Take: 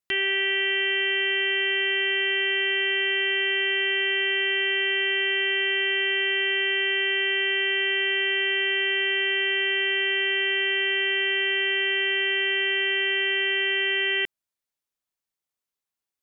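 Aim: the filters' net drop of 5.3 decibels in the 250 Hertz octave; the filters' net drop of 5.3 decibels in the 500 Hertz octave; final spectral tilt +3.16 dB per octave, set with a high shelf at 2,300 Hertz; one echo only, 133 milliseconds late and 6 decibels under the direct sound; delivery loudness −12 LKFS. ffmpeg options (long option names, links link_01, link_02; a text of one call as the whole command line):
ffmpeg -i in.wav -af "equalizer=frequency=250:width_type=o:gain=-7.5,equalizer=frequency=500:width_type=o:gain=-4,highshelf=frequency=2300:gain=6,aecho=1:1:133:0.501,volume=5.5dB" out.wav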